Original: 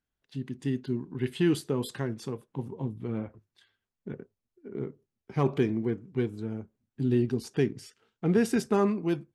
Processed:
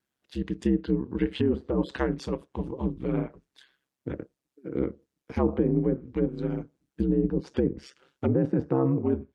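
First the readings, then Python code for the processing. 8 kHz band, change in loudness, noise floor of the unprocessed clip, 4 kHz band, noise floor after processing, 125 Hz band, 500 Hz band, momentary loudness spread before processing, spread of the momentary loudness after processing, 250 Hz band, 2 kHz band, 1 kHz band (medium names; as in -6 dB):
under -10 dB, +2.0 dB, under -85 dBFS, no reading, under -85 dBFS, +1.5 dB, +2.0 dB, 16 LU, 13 LU, +2.5 dB, -2.0 dB, -0.5 dB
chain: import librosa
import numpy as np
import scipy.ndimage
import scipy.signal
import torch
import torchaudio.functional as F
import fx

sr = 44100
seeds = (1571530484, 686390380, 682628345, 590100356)

p1 = scipy.signal.sosfilt(scipy.signal.butter(4, 140.0, 'highpass', fs=sr, output='sos'), x)
p2 = fx.env_lowpass_down(p1, sr, base_hz=790.0, full_db=-24.0)
p3 = fx.over_compress(p2, sr, threshold_db=-29.0, ratio=-1.0)
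p4 = p2 + F.gain(torch.from_numpy(p3), 3.0).numpy()
p5 = fx.vibrato(p4, sr, rate_hz=0.41, depth_cents=8.4)
y = p5 * np.sin(2.0 * np.pi * 67.0 * np.arange(len(p5)) / sr)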